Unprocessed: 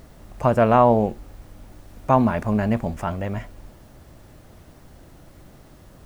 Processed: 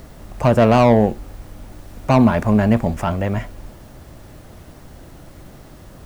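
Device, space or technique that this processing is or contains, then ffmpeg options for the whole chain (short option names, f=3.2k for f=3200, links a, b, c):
one-band saturation: -filter_complex "[0:a]acrossover=split=430|3300[a][b][c];[b]asoftclip=type=tanh:threshold=-19dB[d];[a][d][c]amix=inputs=3:normalize=0,volume=6.5dB"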